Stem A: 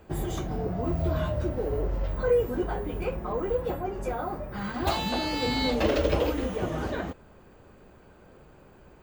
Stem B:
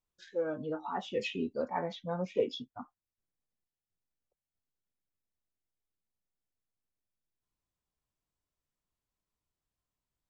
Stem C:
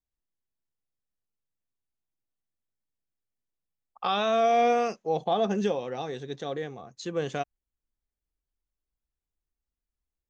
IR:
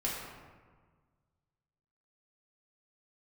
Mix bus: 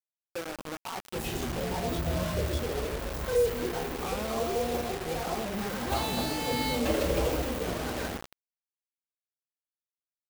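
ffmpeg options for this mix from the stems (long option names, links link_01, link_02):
-filter_complex "[0:a]acompressor=mode=upward:threshold=-44dB:ratio=2.5,adelay=1050,volume=-7.5dB,asplit=2[link_01][link_02];[link_02]volume=-6dB[link_03];[1:a]aecho=1:1:5.3:0.47,volume=-0.5dB,asplit=2[link_04][link_05];[link_05]volume=-17.5dB[link_06];[2:a]aemphasis=mode=reproduction:type=riaa,volume=-1.5dB[link_07];[link_04][link_07]amix=inputs=2:normalize=0,adynamicequalizer=threshold=0.00891:dfrequency=270:dqfactor=1.6:tfrequency=270:tqfactor=1.6:attack=5:release=100:ratio=0.375:range=2:mode=boostabove:tftype=bell,acompressor=threshold=-38dB:ratio=3,volume=0dB[link_08];[3:a]atrim=start_sample=2205[link_09];[link_03][link_06]amix=inputs=2:normalize=0[link_10];[link_10][link_09]afir=irnorm=-1:irlink=0[link_11];[link_01][link_08][link_11]amix=inputs=3:normalize=0,bandreject=frequency=50:width_type=h:width=6,bandreject=frequency=100:width_type=h:width=6,bandreject=frequency=150:width_type=h:width=6,bandreject=frequency=200:width_type=h:width=6,bandreject=frequency=250:width_type=h:width=6,bandreject=frequency=300:width_type=h:width=6,bandreject=frequency=350:width_type=h:width=6,acrusher=bits=5:mix=0:aa=0.000001"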